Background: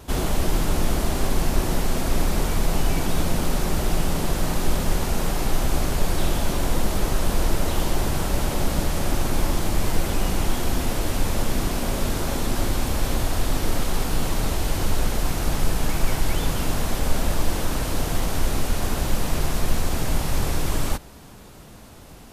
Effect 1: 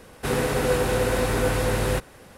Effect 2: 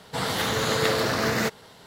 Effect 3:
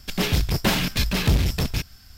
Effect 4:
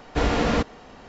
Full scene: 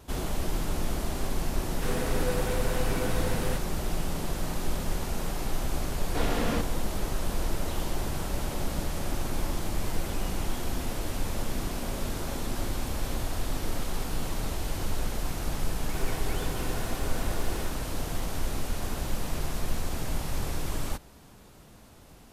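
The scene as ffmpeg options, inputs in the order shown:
-filter_complex "[1:a]asplit=2[a][b];[0:a]volume=-8dB[c];[b]aecho=1:1:2.8:0.93[d];[a]atrim=end=2.37,asetpts=PTS-STARTPTS,volume=-9dB,afade=t=in:d=0.004:c=hsin,afade=t=out:st=2.366:d=0.004:c=hsin,adelay=1580[e];[4:a]atrim=end=1.08,asetpts=PTS-STARTPTS,volume=-8dB,afade=t=in:d=0.004:c=hsin,afade=t=out:st=1.076:d=0.004:c=hsin,adelay=5990[f];[d]atrim=end=2.37,asetpts=PTS-STARTPTS,volume=-17dB,afade=t=in:d=0.004:c=hsin,afade=t=out:st=2.366:d=0.004:c=hsin,adelay=15700[g];[c][e][f][g]amix=inputs=4:normalize=0"

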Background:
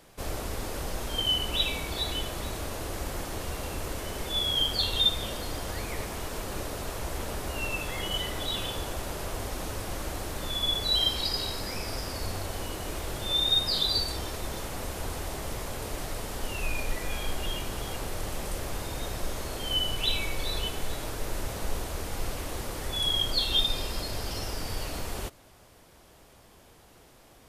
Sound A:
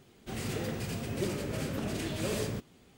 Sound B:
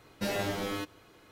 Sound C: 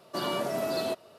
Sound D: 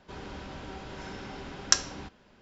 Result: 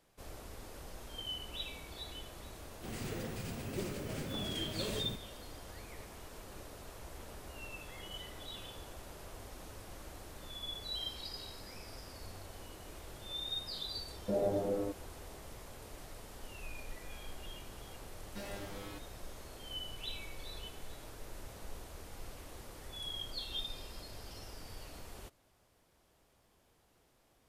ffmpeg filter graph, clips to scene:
-filter_complex "[2:a]asplit=2[a][b];[0:a]volume=-15dB[c];[1:a]acrusher=bits=5:mode=log:mix=0:aa=0.000001[d];[a]lowpass=f=560:t=q:w=2.5[e];[d]atrim=end=2.97,asetpts=PTS-STARTPTS,volume=-6.5dB,afade=t=in:d=0.004:c=hsin,afade=t=out:st=2.966:d=0.004:c=hsin,adelay=2560[f];[e]atrim=end=1.31,asetpts=PTS-STARTPTS,volume=-4dB,afade=t=in:d=0.004:c=hsin,afade=t=out:st=1.306:d=0.004:c=hsin,adelay=14070[g];[b]atrim=end=1.31,asetpts=PTS-STARTPTS,volume=-13.5dB,afade=t=in:d=0.004:c=hsin,afade=t=out:st=1.306:d=0.004:c=hsin,adelay=18140[h];[c][f][g][h]amix=inputs=4:normalize=0"

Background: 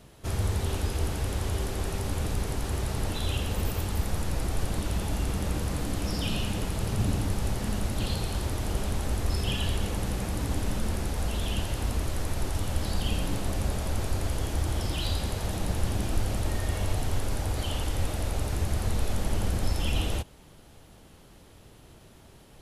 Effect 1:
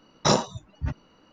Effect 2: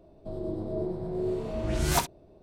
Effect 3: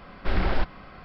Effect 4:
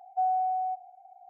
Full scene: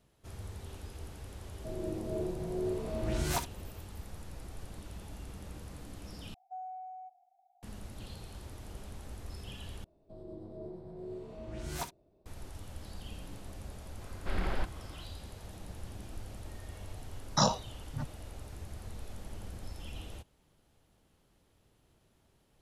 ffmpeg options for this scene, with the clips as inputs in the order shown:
-filter_complex "[2:a]asplit=2[a][b];[0:a]volume=-16.5dB[c];[a]alimiter=limit=-18dB:level=0:latency=1:release=133[d];[4:a]equalizer=f=1k:t=o:w=1.2:g=-9[e];[1:a]asplit=2[f][g];[g]afreqshift=-1.7[h];[f][h]amix=inputs=2:normalize=1[i];[c]asplit=3[j][k][l];[j]atrim=end=6.344[m];[e]atrim=end=1.29,asetpts=PTS-STARTPTS,volume=-10.5dB[n];[k]atrim=start=7.626:end=9.844[o];[b]atrim=end=2.42,asetpts=PTS-STARTPTS,volume=-13dB[p];[l]atrim=start=12.256[q];[d]atrim=end=2.42,asetpts=PTS-STARTPTS,volume=-4dB,afade=t=in:d=0.004:c=hsin,afade=t=out:st=2.416:d=0.004:c=hsin,adelay=1390[r];[3:a]atrim=end=1.04,asetpts=PTS-STARTPTS,volume=-9dB,afade=t=in:d=0.004:c=hsin,afade=t=out:st=1.036:d=0.004:c=hsin,adelay=14010[s];[i]atrim=end=1.32,asetpts=PTS-STARTPTS,volume=-4dB,afade=t=in:d=0.004:c=hsin,afade=t=out:st=1.316:d=0.004:c=hsin,adelay=17120[t];[m][n]acrossfade=d=0.004:c1=hsin:c2=hsin[u];[u][o]acrossfade=d=0.004:c1=hsin:c2=hsin[v];[v][p]acrossfade=d=0.004:c1=hsin:c2=hsin[w];[w][q]acrossfade=d=0.004:c1=hsin:c2=hsin[x];[x][r][s][t]amix=inputs=4:normalize=0"

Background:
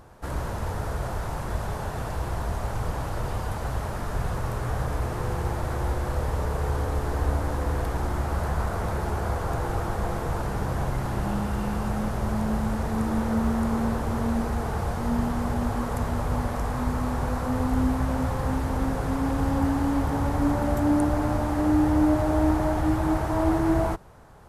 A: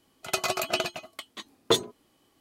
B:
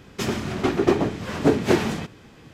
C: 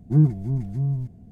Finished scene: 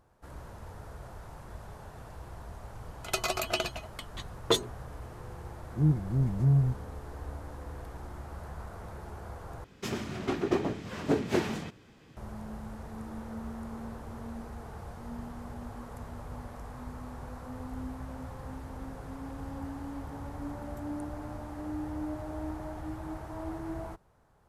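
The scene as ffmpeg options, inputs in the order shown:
-filter_complex "[0:a]volume=-15.5dB[a];[1:a]aresample=32000,aresample=44100[b];[3:a]dynaudnorm=f=110:g=5:m=11.5dB[c];[a]asplit=2[d][e];[d]atrim=end=9.644[f];[2:a]atrim=end=2.53,asetpts=PTS-STARTPTS,volume=-9dB[g];[e]atrim=start=12.166[h];[b]atrim=end=2.4,asetpts=PTS-STARTPTS,volume=-3dB,afade=t=in:d=0.004:c=hsin,afade=t=out:st=2.396:d=0.004:c=hsin,adelay=2800[i];[c]atrim=end=1.31,asetpts=PTS-STARTPTS,volume=-10dB,afade=t=in:d=0.004:c=hsin,afade=t=out:st=1.306:d=0.004:c=hsin,adelay=5660[j];[f][g]acrossfade=d=0.004:c1=hsin:c2=hsin[k];[k][h]acrossfade=d=0.004:c1=hsin:c2=hsin[l];[l][i][j]amix=inputs=3:normalize=0"

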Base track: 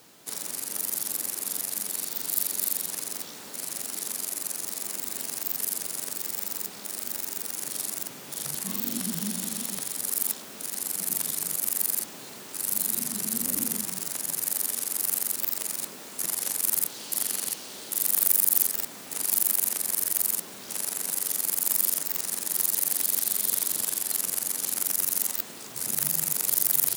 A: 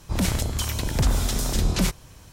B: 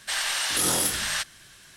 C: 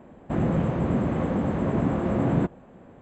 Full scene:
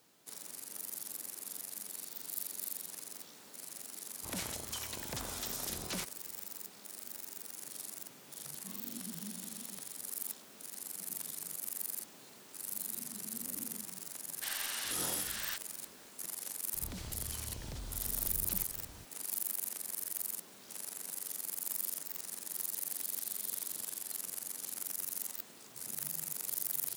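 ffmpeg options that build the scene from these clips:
-filter_complex "[1:a]asplit=2[a][b];[0:a]volume=-13dB[c];[a]highpass=f=480:p=1[d];[b]acompressor=threshold=-36dB:ratio=6:attack=3.2:release=140:knee=1:detection=peak[e];[d]atrim=end=2.32,asetpts=PTS-STARTPTS,volume=-11.5dB,afade=t=in:d=0.004:c=hsin,afade=t=out:st=2.316:d=0.004:c=hsin,adelay=4140[f];[2:a]atrim=end=1.76,asetpts=PTS-STARTPTS,volume=-13.5dB,afade=t=in:d=0.004:c=hsin,afade=t=out:st=1.756:d=0.004:c=hsin,adelay=14340[g];[e]atrim=end=2.32,asetpts=PTS-STARTPTS,volume=-6dB,afade=t=in:d=0.004:c=hsin,afade=t=out:st=2.316:d=0.004:c=hsin,adelay=16730[h];[c][f][g][h]amix=inputs=4:normalize=0"

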